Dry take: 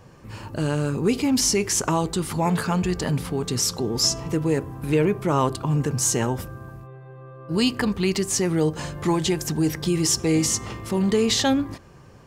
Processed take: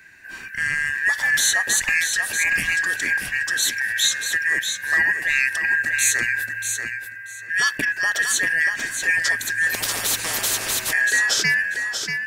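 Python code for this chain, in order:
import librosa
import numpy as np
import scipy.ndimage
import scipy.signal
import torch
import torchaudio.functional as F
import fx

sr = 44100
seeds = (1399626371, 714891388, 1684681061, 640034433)

p1 = fx.band_shuffle(x, sr, order='2143')
p2 = fx.high_shelf(p1, sr, hz=8500.0, db=7.5)
p3 = p2 + fx.echo_feedback(p2, sr, ms=637, feedback_pct=18, wet_db=-6.5, dry=0)
y = fx.spectral_comp(p3, sr, ratio=4.0, at=(9.74, 10.93))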